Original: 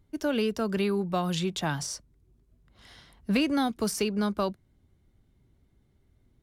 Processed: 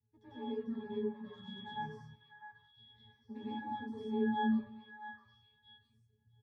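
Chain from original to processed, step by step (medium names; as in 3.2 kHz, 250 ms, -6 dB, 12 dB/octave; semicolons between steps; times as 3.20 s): valve stage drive 30 dB, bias 0.7; reverberation RT60 1.2 s, pre-delay 90 ms, DRR -9 dB; in parallel at -10 dB: hard clipper -21.5 dBFS, distortion -11 dB; on the sum: peaking EQ 460 Hz -5 dB 0.72 oct; pitch-class resonator G#, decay 0.54 s; reverb removal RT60 0.91 s; on a send: repeats whose band climbs or falls 653 ms, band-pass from 1.4 kHz, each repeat 1.4 oct, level -5 dB; on the sum: frequency shift +14 Hz; doubling 12 ms -3 dB; trim +1 dB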